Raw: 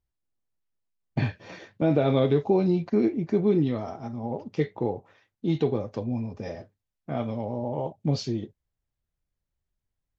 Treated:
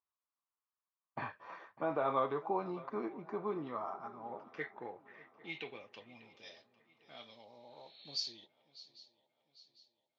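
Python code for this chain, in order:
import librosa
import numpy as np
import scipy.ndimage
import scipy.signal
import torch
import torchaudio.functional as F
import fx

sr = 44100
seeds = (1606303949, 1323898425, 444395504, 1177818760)

y = fx.filter_sweep_bandpass(x, sr, from_hz=1100.0, to_hz=4100.0, start_s=3.87, end_s=6.79, q=5.3)
y = fx.echo_swing(y, sr, ms=800, ratio=3, feedback_pct=44, wet_db=-20.0)
y = fx.spec_repair(y, sr, seeds[0], start_s=7.54, length_s=0.68, low_hz=1600.0, high_hz=4400.0, source='both')
y = y * librosa.db_to_amplitude(7.0)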